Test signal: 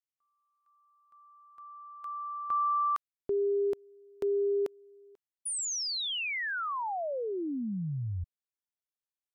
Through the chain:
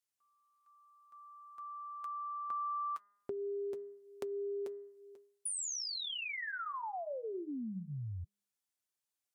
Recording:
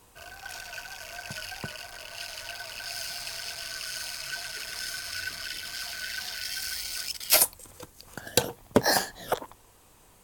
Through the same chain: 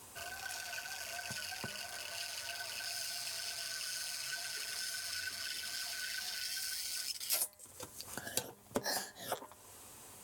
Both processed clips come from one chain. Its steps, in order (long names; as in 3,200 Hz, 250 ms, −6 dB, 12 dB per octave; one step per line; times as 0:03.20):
high-pass filter 93 Hz 12 dB per octave
parametric band 8,800 Hz +5.5 dB 1.6 octaves
notch comb filter 160 Hz
hum removal 202.2 Hz, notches 10
downward compressor 2.5 to 1, threshold −46 dBFS
level +3 dB